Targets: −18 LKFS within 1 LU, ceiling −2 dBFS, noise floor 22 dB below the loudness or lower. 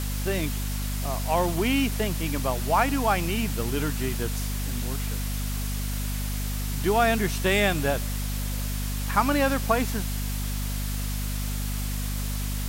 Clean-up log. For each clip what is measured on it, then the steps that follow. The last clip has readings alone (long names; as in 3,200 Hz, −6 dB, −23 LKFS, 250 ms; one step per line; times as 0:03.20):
mains hum 50 Hz; hum harmonics up to 250 Hz; level of the hum −27 dBFS; background noise floor −29 dBFS; target noise floor −49 dBFS; integrated loudness −27.0 LKFS; sample peak −8.0 dBFS; target loudness −18.0 LKFS
→ mains-hum notches 50/100/150/200/250 Hz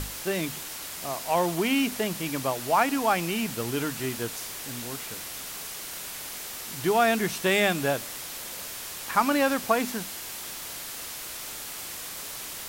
mains hum none found; background noise floor −38 dBFS; target noise floor −51 dBFS
→ broadband denoise 13 dB, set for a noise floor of −38 dBFS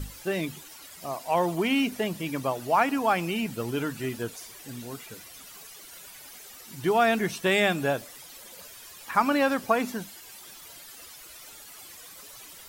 background noise floor −47 dBFS; target noise floor −49 dBFS
→ broadband denoise 6 dB, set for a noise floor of −47 dBFS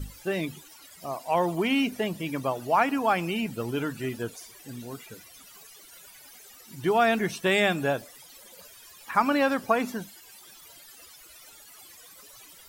background noise floor −51 dBFS; integrated loudness −27.0 LKFS; sample peak −9.0 dBFS; target loudness −18.0 LKFS
→ level +9 dB
brickwall limiter −2 dBFS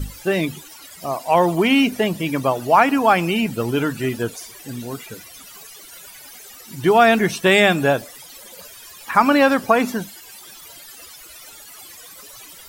integrated loudness −18.0 LKFS; sample peak −2.0 dBFS; background noise floor −42 dBFS